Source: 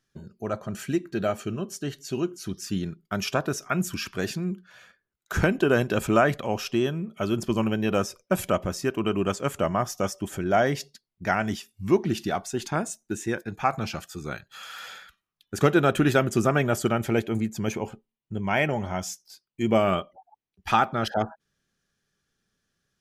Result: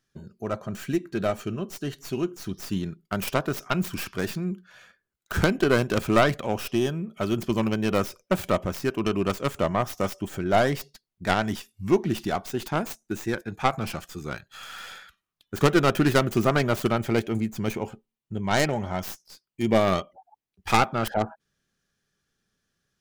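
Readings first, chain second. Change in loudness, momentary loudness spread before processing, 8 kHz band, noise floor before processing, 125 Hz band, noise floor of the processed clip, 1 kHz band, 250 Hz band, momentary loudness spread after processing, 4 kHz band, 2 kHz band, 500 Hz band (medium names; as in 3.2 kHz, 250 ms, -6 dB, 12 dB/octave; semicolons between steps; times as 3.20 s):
+0.5 dB, 13 LU, -2.0 dB, -84 dBFS, +0.5 dB, -84 dBFS, 0.0 dB, +0.5 dB, 14 LU, +1.5 dB, 0.0 dB, 0.0 dB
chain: tracing distortion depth 0.27 ms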